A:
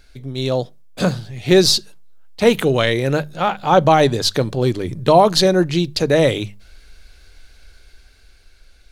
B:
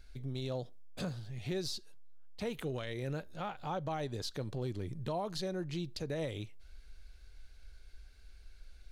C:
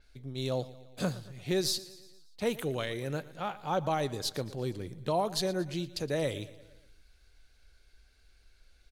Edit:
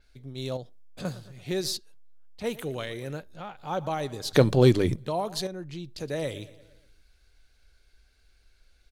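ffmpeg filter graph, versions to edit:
-filter_complex "[1:a]asplit=4[a][b][c][d];[2:a]asplit=6[e][f][g][h][i][j];[e]atrim=end=0.572[k];[a]atrim=start=0.568:end=1.052[l];[f]atrim=start=1.048:end=1.772[m];[b]atrim=start=1.768:end=2.442[n];[g]atrim=start=2.438:end=3.26[o];[c]atrim=start=3.1:end=3.72[p];[h]atrim=start=3.56:end=4.332[q];[0:a]atrim=start=4.328:end=4.962[r];[i]atrim=start=4.958:end=5.472[s];[d]atrim=start=5.468:end=5.982[t];[j]atrim=start=5.978[u];[k][l]acrossfade=d=0.004:c1=hsin:c2=hsin[v];[v][m]acrossfade=d=0.004:c1=hsin:c2=hsin[w];[w][n]acrossfade=d=0.004:c1=hsin:c2=hsin[x];[x][o]acrossfade=d=0.004:c1=hsin:c2=hsin[y];[y][p]acrossfade=d=0.16:c1=tri:c2=tri[z];[z][q]acrossfade=d=0.16:c1=tri:c2=tri[aa];[aa][r]acrossfade=d=0.004:c1=hsin:c2=hsin[ab];[ab][s]acrossfade=d=0.004:c1=hsin:c2=hsin[ac];[ac][t]acrossfade=d=0.004:c1=hsin:c2=hsin[ad];[ad][u]acrossfade=d=0.004:c1=hsin:c2=hsin"

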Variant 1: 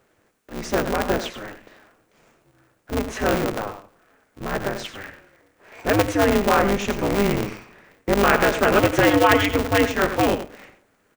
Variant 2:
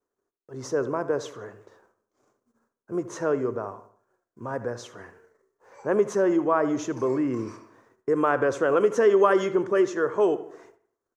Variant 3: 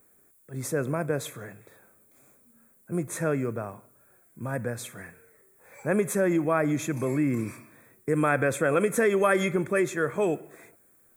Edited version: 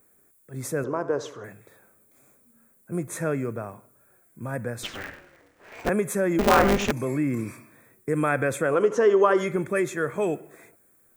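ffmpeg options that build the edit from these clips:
-filter_complex "[1:a]asplit=2[a][b];[0:a]asplit=2[c][d];[2:a]asplit=5[e][f][g][h][i];[e]atrim=end=0.842[j];[a]atrim=start=0.838:end=1.442[k];[f]atrim=start=1.438:end=4.832[l];[c]atrim=start=4.828:end=5.892[m];[g]atrim=start=5.888:end=6.392[n];[d]atrim=start=6.388:end=6.912[o];[h]atrim=start=6.908:end=8.85[p];[b]atrim=start=8.61:end=9.57[q];[i]atrim=start=9.33[r];[j][k]acrossfade=d=0.004:c1=hsin:c2=hsin[s];[s][l]acrossfade=d=0.004:c1=hsin:c2=hsin[t];[t][m]acrossfade=d=0.004:c1=hsin:c2=hsin[u];[u][n]acrossfade=d=0.004:c1=hsin:c2=hsin[v];[v][o]acrossfade=d=0.004:c1=hsin:c2=hsin[w];[w][p]acrossfade=d=0.004:c1=hsin:c2=hsin[x];[x][q]acrossfade=d=0.24:c1=tri:c2=tri[y];[y][r]acrossfade=d=0.24:c1=tri:c2=tri"

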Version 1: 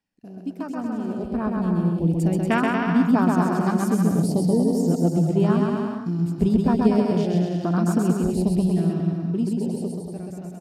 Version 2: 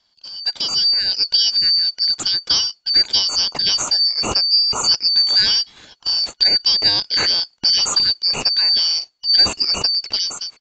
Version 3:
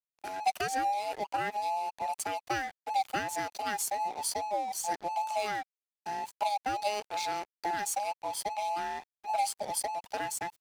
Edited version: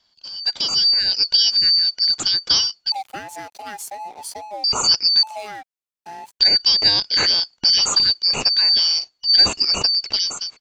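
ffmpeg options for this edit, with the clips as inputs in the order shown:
-filter_complex "[2:a]asplit=2[a][b];[1:a]asplit=3[c][d][e];[c]atrim=end=2.922[f];[a]atrim=start=2.918:end=4.642[g];[d]atrim=start=4.638:end=5.232[h];[b]atrim=start=5.228:end=6.402[i];[e]atrim=start=6.398[j];[f][g]acrossfade=d=0.004:c1=hsin:c2=hsin[k];[k][h]acrossfade=d=0.004:c1=hsin:c2=hsin[l];[l][i]acrossfade=d=0.004:c1=hsin:c2=hsin[m];[m][j]acrossfade=d=0.004:c1=hsin:c2=hsin"

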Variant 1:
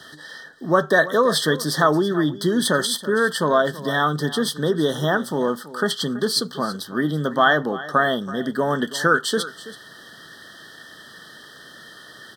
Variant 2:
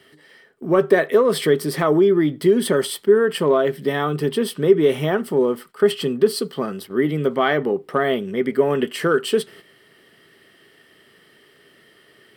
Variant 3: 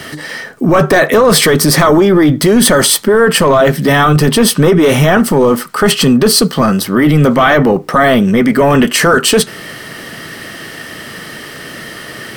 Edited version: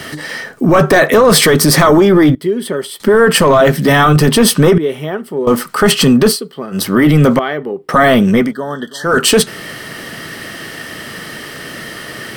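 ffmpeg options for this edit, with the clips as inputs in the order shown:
-filter_complex "[1:a]asplit=4[a][b][c][d];[2:a]asplit=6[e][f][g][h][i][j];[e]atrim=end=2.352[k];[a]atrim=start=2.348:end=3.002[l];[f]atrim=start=2.998:end=4.782[m];[b]atrim=start=4.778:end=5.472[n];[g]atrim=start=5.468:end=6.38[o];[c]atrim=start=6.28:end=6.81[p];[h]atrim=start=6.71:end=7.392[q];[d]atrim=start=7.388:end=7.892[r];[i]atrim=start=7.888:end=8.54[s];[0:a]atrim=start=8.38:end=9.19[t];[j]atrim=start=9.03[u];[k][l]acrossfade=d=0.004:c1=hsin:c2=hsin[v];[v][m]acrossfade=d=0.004:c1=hsin:c2=hsin[w];[w][n]acrossfade=d=0.004:c1=hsin:c2=hsin[x];[x][o]acrossfade=d=0.004:c1=hsin:c2=hsin[y];[y][p]acrossfade=d=0.1:c1=tri:c2=tri[z];[z][q]acrossfade=d=0.1:c1=tri:c2=tri[aa];[aa][r]acrossfade=d=0.004:c1=hsin:c2=hsin[ab];[ab][s]acrossfade=d=0.004:c1=hsin:c2=hsin[ac];[ac][t]acrossfade=d=0.16:c1=tri:c2=tri[ad];[ad][u]acrossfade=d=0.16:c1=tri:c2=tri"

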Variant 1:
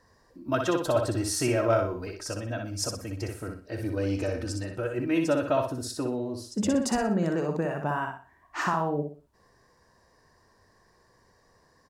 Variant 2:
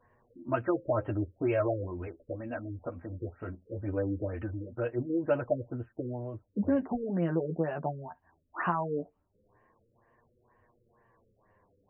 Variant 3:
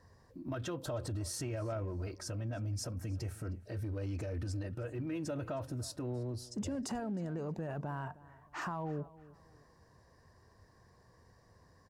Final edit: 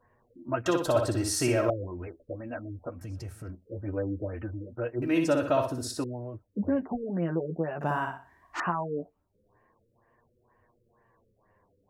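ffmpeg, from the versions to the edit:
-filter_complex "[0:a]asplit=3[a][b][c];[1:a]asplit=5[d][e][f][g][h];[d]atrim=end=0.662[i];[a]atrim=start=0.658:end=1.702[j];[e]atrim=start=1.698:end=3.012[k];[2:a]atrim=start=3.008:end=3.502[l];[f]atrim=start=3.498:end=5.022[m];[b]atrim=start=5.018:end=6.042[n];[g]atrim=start=6.038:end=7.812[o];[c]atrim=start=7.808:end=8.602[p];[h]atrim=start=8.598[q];[i][j]acrossfade=d=0.004:c1=hsin:c2=hsin[r];[r][k]acrossfade=d=0.004:c1=hsin:c2=hsin[s];[s][l]acrossfade=d=0.004:c1=hsin:c2=hsin[t];[t][m]acrossfade=d=0.004:c1=hsin:c2=hsin[u];[u][n]acrossfade=d=0.004:c1=hsin:c2=hsin[v];[v][o]acrossfade=d=0.004:c1=hsin:c2=hsin[w];[w][p]acrossfade=d=0.004:c1=hsin:c2=hsin[x];[x][q]acrossfade=d=0.004:c1=hsin:c2=hsin"

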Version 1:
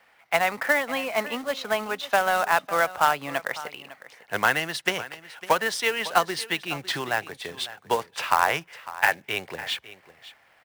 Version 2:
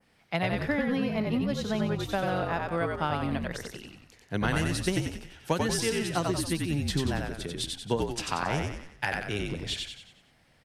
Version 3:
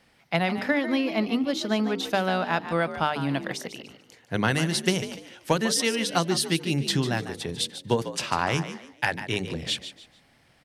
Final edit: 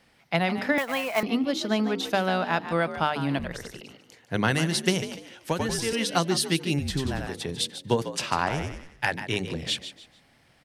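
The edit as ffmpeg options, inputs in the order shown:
-filter_complex "[1:a]asplit=4[a][b][c][d];[2:a]asplit=6[e][f][g][h][i][j];[e]atrim=end=0.782[k];[0:a]atrim=start=0.778:end=1.232[l];[f]atrim=start=1.228:end=3.392[m];[a]atrim=start=3.388:end=3.812[n];[g]atrim=start=3.808:end=5.502[o];[b]atrim=start=5.498:end=5.932[p];[h]atrim=start=5.928:end=6.792[q];[c]atrim=start=6.788:end=7.272[r];[i]atrim=start=7.268:end=8.492[s];[d]atrim=start=8.488:end=9.042[t];[j]atrim=start=9.038[u];[k][l]acrossfade=d=0.004:c1=hsin:c2=hsin[v];[v][m]acrossfade=d=0.004:c1=hsin:c2=hsin[w];[w][n]acrossfade=d=0.004:c1=hsin:c2=hsin[x];[x][o]acrossfade=d=0.004:c1=hsin:c2=hsin[y];[y][p]acrossfade=d=0.004:c1=hsin:c2=hsin[z];[z][q]acrossfade=d=0.004:c1=hsin:c2=hsin[aa];[aa][r]acrossfade=d=0.004:c1=hsin:c2=hsin[ab];[ab][s]acrossfade=d=0.004:c1=hsin:c2=hsin[ac];[ac][t]acrossfade=d=0.004:c1=hsin:c2=hsin[ad];[ad][u]acrossfade=d=0.004:c1=hsin:c2=hsin"

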